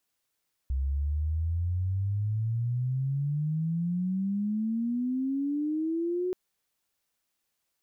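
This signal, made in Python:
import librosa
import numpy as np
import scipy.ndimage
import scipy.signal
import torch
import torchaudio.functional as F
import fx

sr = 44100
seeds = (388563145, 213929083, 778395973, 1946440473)

y = fx.chirp(sr, length_s=5.63, from_hz=65.0, to_hz=370.0, law='logarithmic', from_db=-25.5, to_db=-26.5)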